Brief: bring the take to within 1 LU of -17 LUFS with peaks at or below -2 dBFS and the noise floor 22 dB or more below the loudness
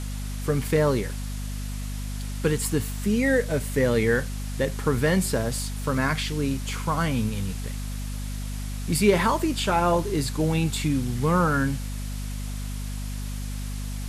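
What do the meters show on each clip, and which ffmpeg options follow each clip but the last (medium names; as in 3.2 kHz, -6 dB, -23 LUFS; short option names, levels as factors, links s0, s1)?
hum 50 Hz; highest harmonic 250 Hz; hum level -29 dBFS; noise floor -31 dBFS; noise floor target -48 dBFS; loudness -26.0 LUFS; peak level -7.5 dBFS; loudness target -17.0 LUFS
-> -af "bandreject=f=50:t=h:w=4,bandreject=f=100:t=h:w=4,bandreject=f=150:t=h:w=4,bandreject=f=200:t=h:w=4,bandreject=f=250:t=h:w=4"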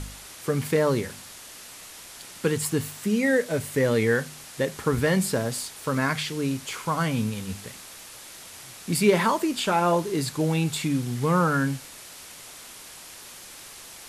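hum not found; noise floor -44 dBFS; noise floor target -47 dBFS
-> -af "afftdn=nr=6:nf=-44"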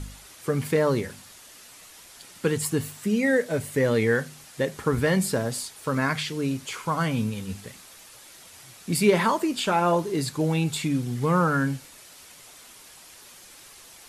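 noise floor -49 dBFS; loudness -25.0 LUFS; peak level -8.0 dBFS; loudness target -17.0 LUFS
-> -af "volume=2.51,alimiter=limit=0.794:level=0:latency=1"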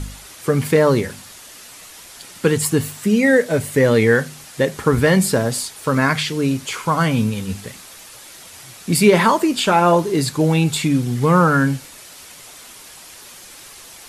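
loudness -17.5 LUFS; peak level -2.0 dBFS; noise floor -41 dBFS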